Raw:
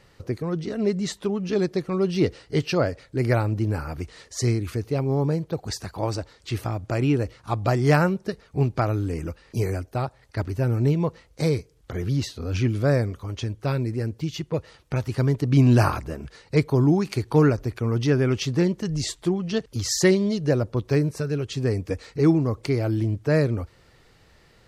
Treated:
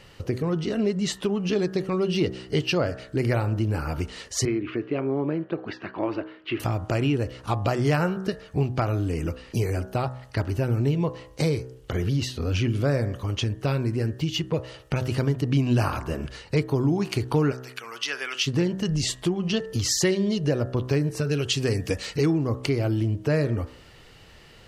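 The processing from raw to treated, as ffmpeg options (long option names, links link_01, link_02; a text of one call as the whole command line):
ffmpeg -i in.wav -filter_complex "[0:a]asettb=1/sr,asplit=3[link_01][link_02][link_03];[link_01]atrim=end=4.454[link_04];[link_02]atrim=start=4.45:end=6.6,asetpts=PTS-STARTPTS,afade=type=in:duration=0.004:curve=qsin,afade=type=out:start_time=2.146:duration=0.004:curve=qsin,highpass=270,equalizer=frequency=330:width_type=q:width=4:gain=6,equalizer=frequency=480:width_type=q:width=4:gain=-7,equalizer=frequency=820:width_type=q:width=4:gain=-7,lowpass=frequency=2700:width=0.5412,lowpass=frequency=2700:width=1.3066[link_05];[link_03]atrim=start=6.596[link_06];[link_04][link_05]acrossfade=duration=0.004:curve1=hsin:curve2=qsin[link_07];[link_07][link_06]acrossfade=duration=0.004:curve1=qsin:curve2=hsin,asplit=3[link_08][link_09][link_10];[link_08]afade=type=out:start_time=17.51:duration=0.02[link_11];[link_09]highpass=1400,afade=type=in:start_time=17.51:duration=0.02,afade=type=out:start_time=18.46:duration=0.02[link_12];[link_10]afade=type=in:start_time=18.46:duration=0.02[link_13];[link_11][link_12][link_13]amix=inputs=3:normalize=0,asettb=1/sr,asplit=3[link_14][link_15][link_16];[link_14]atrim=end=21.314[link_17];[link_15]atrim=start=21.31:end=22.26,asetpts=PTS-STARTPTS,afade=type=in:duration=0.004:curve=qsin,afade=type=out:start_time=0.946:duration=0.004:curve=qsin,highshelf=frequency=2100:gain=9.5[link_18];[link_16]atrim=start=22.256[link_19];[link_17][link_18]acrossfade=duration=0.004:curve1=hsin:curve2=qsin[link_20];[link_20][link_19]acrossfade=duration=0.004:curve1=qsin:curve2=hsin,equalizer=frequency=2900:width_type=o:width=0.24:gain=8.5,bandreject=frequency=63.42:width_type=h:width=4,bandreject=frequency=126.84:width_type=h:width=4,bandreject=frequency=190.26:width_type=h:width=4,bandreject=frequency=253.68:width_type=h:width=4,bandreject=frequency=317.1:width_type=h:width=4,bandreject=frequency=380.52:width_type=h:width=4,bandreject=frequency=443.94:width_type=h:width=4,bandreject=frequency=507.36:width_type=h:width=4,bandreject=frequency=570.78:width_type=h:width=4,bandreject=frequency=634.2:width_type=h:width=4,bandreject=frequency=697.62:width_type=h:width=4,bandreject=frequency=761.04:width_type=h:width=4,bandreject=frequency=824.46:width_type=h:width=4,bandreject=frequency=887.88:width_type=h:width=4,bandreject=frequency=951.3:width_type=h:width=4,bandreject=frequency=1014.72:width_type=h:width=4,bandreject=frequency=1078.14:width_type=h:width=4,bandreject=frequency=1141.56:width_type=h:width=4,bandreject=frequency=1204.98:width_type=h:width=4,bandreject=frequency=1268.4:width_type=h:width=4,bandreject=frequency=1331.82:width_type=h:width=4,bandreject=frequency=1395.24:width_type=h:width=4,bandreject=frequency=1458.66:width_type=h:width=4,bandreject=frequency=1522.08:width_type=h:width=4,bandreject=frequency=1585.5:width_type=h:width=4,bandreject=frequency=1648.92:width_type=h:width=4,bandreject=frequency=1712.34:width_type=h:width=4,bandreject=frequency=1775.76:width_type=h:width=4,bandreject=frequency=1839.18:width_type=h:width=4,bandreject=frequency=1902.6:width_type=h:width=4,acompressor=threshold=-29dB:ratio=2.5,volume=5.5dB" out.wav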